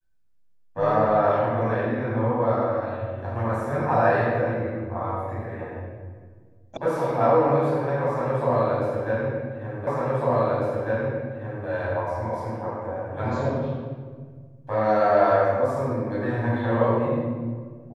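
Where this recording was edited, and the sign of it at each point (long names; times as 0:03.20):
0:06.77: cut off before it has died away
0:09.87: the same again, the last 1.8 s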